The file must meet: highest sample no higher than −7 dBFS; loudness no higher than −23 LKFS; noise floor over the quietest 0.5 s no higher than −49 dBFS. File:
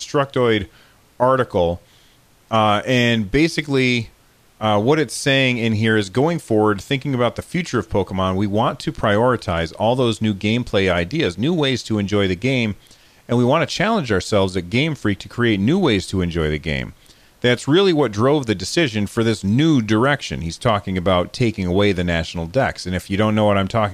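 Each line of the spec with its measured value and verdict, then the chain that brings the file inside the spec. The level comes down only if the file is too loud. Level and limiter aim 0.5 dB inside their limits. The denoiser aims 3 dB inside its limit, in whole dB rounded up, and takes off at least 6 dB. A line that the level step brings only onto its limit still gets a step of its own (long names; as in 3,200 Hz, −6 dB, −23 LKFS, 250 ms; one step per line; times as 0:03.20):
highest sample −4.5 dBFS: out of spec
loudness −18.5 LKFS: out of spec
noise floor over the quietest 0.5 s −53 dBFS: in spec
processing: level −5 dB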